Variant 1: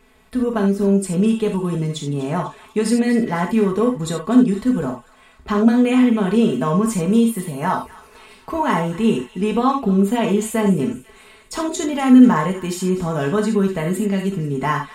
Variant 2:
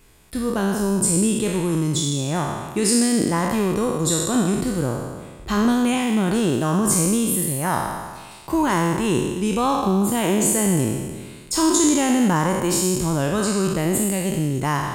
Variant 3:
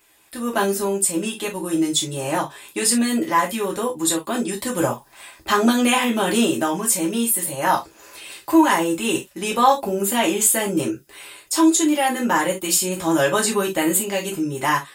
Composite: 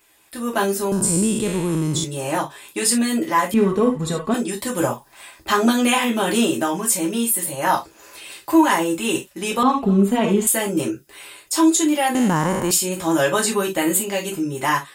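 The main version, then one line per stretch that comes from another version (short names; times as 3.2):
3
0.92–2.04 from 2
3.54–4.34 from 1
9.63–10.47 from 1
12.15–12.71 from 2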